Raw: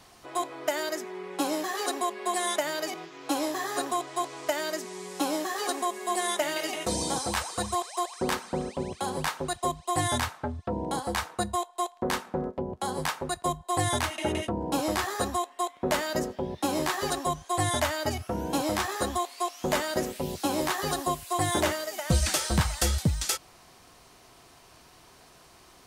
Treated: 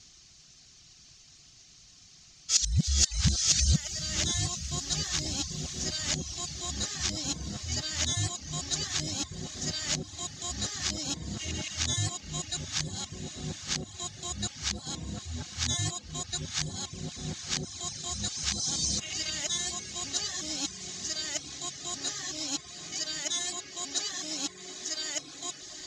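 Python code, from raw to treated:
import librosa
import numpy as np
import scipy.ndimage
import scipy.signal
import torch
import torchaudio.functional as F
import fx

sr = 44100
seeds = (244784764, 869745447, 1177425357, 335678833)

y = x[::-1].copy()
y = fx.high_shelf(y, sr, hz=8800.0, db=-5.5)
y = fx.notch(y, sr, hz=970.0, q=5.4)
y = fx.echo_diffused(y, sr, ms=859, feedback_pct=72, wet_db=-10.5)
y = fx.dereverb_blind(y, sr, rt60_s=0.5)
y = fx.curve_eq(y, sr, hz=(160.0, 490.0, 1300.0, 6700.0, 10000.0), db=(0, -18, -12, 12, -19))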